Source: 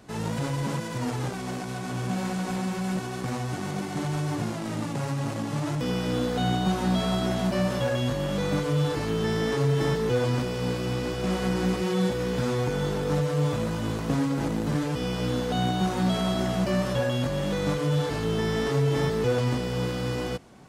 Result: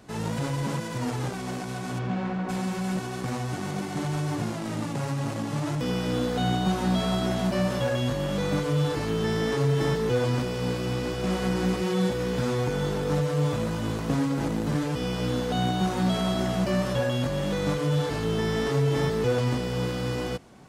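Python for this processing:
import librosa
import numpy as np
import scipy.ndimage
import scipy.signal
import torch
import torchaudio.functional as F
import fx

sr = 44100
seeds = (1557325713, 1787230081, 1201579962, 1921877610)

y = fx.lowpass(x, sr, hz=fx.line((1.98, 3600.0), (2.48, 2000.0)), slope=12, at=(1.98, 2.48), fade=0.02)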